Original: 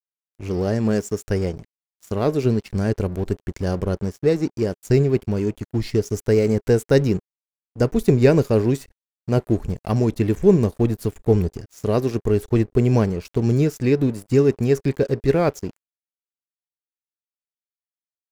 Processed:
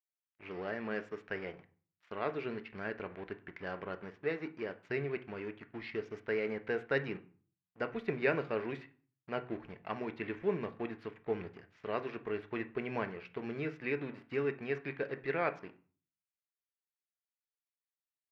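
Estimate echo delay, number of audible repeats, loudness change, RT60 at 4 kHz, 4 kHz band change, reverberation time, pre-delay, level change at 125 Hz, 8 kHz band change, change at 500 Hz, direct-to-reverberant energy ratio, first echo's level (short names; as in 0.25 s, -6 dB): none, none, -17.5 dB, 0.35 s, -14.0 dB, 0.45 s, 3 ms, -26.5 dB, under -35 dB, -16.5 dB, 9.5 dB, none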